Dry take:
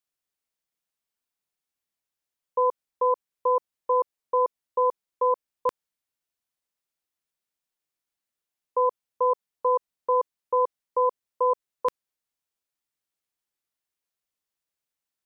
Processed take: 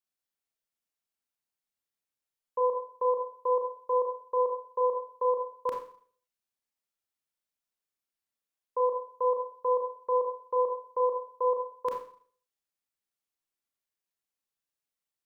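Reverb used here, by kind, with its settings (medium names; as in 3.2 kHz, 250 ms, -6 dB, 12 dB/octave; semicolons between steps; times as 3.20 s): Schroeder reverb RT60 0.5 s, combs from 28 ms, DRR 1 dB; trim -6.5 dB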